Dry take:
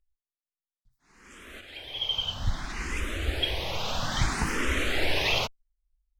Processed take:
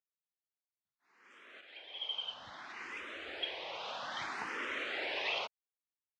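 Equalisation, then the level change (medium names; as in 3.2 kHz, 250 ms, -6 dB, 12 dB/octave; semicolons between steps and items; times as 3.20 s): band-pass 480–3400 Hz; -7.5 dB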